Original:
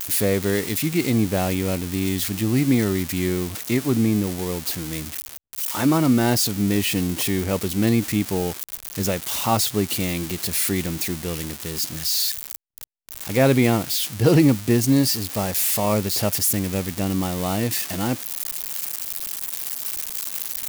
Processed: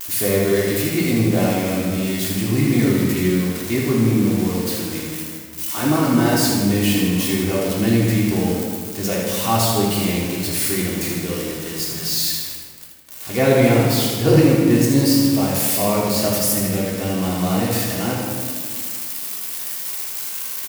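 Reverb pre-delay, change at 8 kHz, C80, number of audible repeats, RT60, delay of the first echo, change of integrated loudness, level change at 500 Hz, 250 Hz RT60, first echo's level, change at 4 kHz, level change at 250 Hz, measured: 3 ms, +1.5 dB, 1.5 dB, 1, 1.8 s, 79 ms, +3.0 dB, +4.5 dB, 2.2 s, -5.5 dB, +2.0 dB, +3.5 dB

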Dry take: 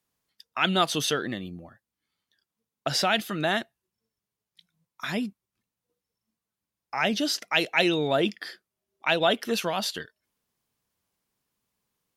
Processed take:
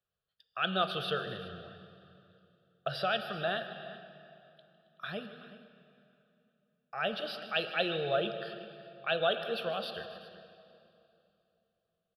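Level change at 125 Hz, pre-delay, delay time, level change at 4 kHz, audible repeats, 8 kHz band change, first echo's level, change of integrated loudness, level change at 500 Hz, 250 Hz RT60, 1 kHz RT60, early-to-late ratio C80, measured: -8.0 dB, 15 ms, 154 ms, -8.0 dB, 3, under -25 dB, -16.0 dB, -8.5 dB, -5.5 dB, 3.4 s, 2.6 s, 8.5 dB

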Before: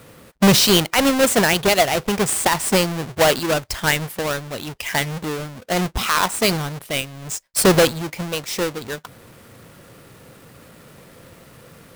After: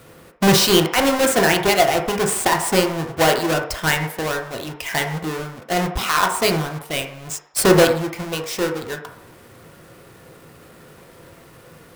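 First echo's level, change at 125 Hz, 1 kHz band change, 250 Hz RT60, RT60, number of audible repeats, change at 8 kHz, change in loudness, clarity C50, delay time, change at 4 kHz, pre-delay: no echo, -0.5 dB, +2.0 dB, 0.45 s, 0.60 s, no echo, -1.5 dB, 0.0 dB, 8.0 dB, no echo, -1.5 dB, 3 ms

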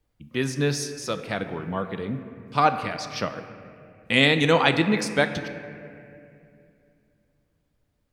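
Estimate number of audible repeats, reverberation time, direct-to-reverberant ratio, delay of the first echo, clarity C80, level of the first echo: no echo, 2.5 s, 8.0 dB, no echo, 10.5 dB, no echo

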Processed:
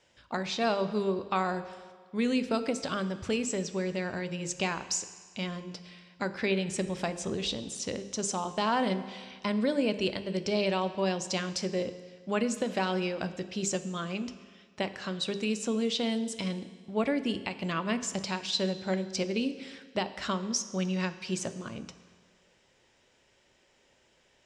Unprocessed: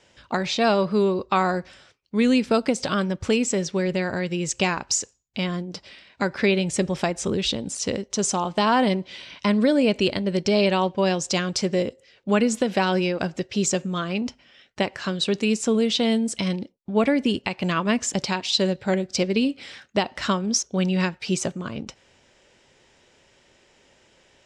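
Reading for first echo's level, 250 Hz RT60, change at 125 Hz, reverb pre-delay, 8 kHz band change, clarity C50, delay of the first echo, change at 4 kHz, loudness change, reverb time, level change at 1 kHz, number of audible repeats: no echo, 1.7 s, -8.5 dB, 11 ms, -7.5 dB, 13.0 dB, no echo, -7.5 dB, -8.0 dB, 1.7 s, -7.5 dB, no echo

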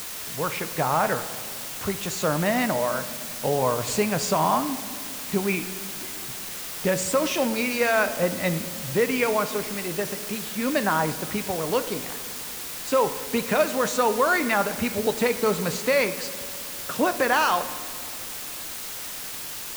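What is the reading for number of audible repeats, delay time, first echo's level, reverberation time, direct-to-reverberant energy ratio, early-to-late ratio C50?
no echo, no echo, no echo, 2.3 s, 10.0 dB, 12.5 dB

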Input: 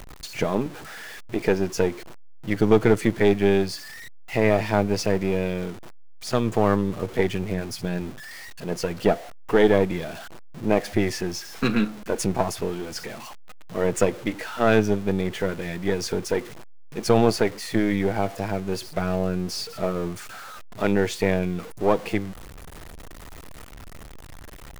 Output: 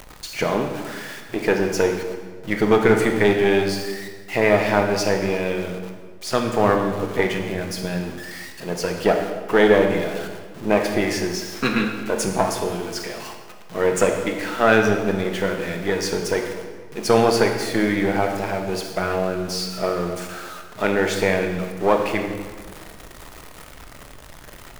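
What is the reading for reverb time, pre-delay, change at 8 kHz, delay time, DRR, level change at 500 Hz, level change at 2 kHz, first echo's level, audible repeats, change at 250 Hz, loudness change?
1.6 s, 16 ms, +4.0 dB, no echo, 3.5 dB, +3.5 dB, +6.5 dB, no echo, no echo, +1.0 dB, +3.0 dB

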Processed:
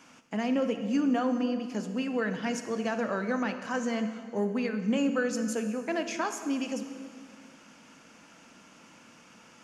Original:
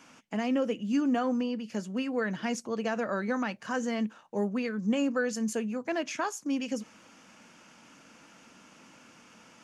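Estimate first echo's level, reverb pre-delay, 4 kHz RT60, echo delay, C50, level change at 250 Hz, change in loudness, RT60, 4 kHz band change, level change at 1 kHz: no echo, 33 ms, 1.7 s, no echo, 9.0 dB, +1.0 dB, +0.5 dB, 2.0 s, +0.5 dB, +0.5 dB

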